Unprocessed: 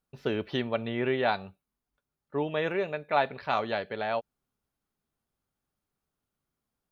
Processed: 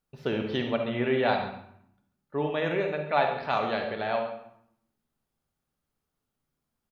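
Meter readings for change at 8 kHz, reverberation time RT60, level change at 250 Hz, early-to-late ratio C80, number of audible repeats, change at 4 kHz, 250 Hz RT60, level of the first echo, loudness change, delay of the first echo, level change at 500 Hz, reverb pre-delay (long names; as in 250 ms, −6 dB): can't be measured, 0.70 s, +2.5 dB, 8.0 dB, 1, +1.5 dB, 1.1 s, −15.0 dB, +1.5 dB, 138 ms, +2.0 dB, 33 ms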